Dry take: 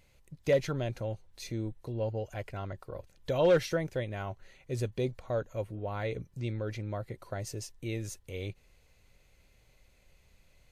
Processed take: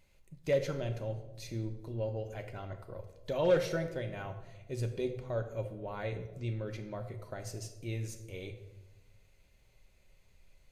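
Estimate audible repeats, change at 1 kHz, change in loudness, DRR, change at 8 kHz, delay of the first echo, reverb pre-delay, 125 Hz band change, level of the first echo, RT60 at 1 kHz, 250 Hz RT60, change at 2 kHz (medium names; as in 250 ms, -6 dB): no echo, -3.5 dB, -2.5 dB, 5.0 dB, -3.5 dB, no echo, 3 ms, -2.0 dB, no echo, 0.95 s, 1.4 s, -3.0 dB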